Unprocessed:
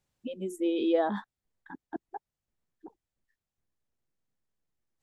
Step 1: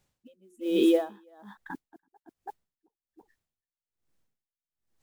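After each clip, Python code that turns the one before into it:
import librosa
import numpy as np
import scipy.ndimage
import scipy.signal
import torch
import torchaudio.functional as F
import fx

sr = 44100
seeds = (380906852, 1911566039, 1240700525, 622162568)

y = fx.mod_noise(x, sr, seeds[0], snr_db=29)
y = y + 10.0 ** (-8.0 / 20.0) * np.pad(y, (int(331 * sr / 1000.0), 0))[:len(y)]
y = y * 10.0 ** (-32 * (0.5 - 0.5 * np.cos(2.0 * np.pi * 1.2 * np.arange(len(y)) / sr)) / 20.0)
y = y * librosa.db_to_amplitude(7.5)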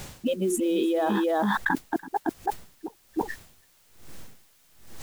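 y = fx.env_flatten(x, sr, amount_pct=100)
y = y * librosa.db_to_amplitude(-5.5)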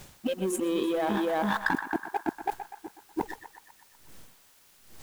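y = fx.power_curve(x, sr, exponent=1.4)
y = fx.quant_dither(y, sr, seeds[1], bits=10, dither='triangular')
y = fx.echo_banded(y, sr, ms=123, feedback_pct=66, hz=1300.0, wet_db=-8.0)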